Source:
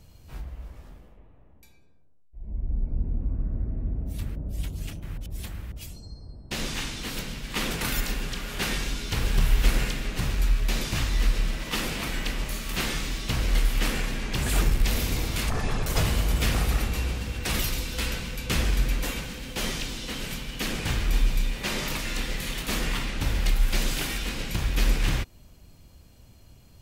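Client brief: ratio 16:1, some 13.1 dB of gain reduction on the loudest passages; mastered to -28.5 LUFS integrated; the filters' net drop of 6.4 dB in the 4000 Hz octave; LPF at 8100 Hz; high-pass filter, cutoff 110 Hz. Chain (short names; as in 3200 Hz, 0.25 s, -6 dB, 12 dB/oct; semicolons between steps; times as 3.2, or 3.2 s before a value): HPF 110 Hz; LPF 8100 Hz; bell 4000 Hz -8.5 dB; compressor 16:1, threshold -38 dBFS; gain +14 dB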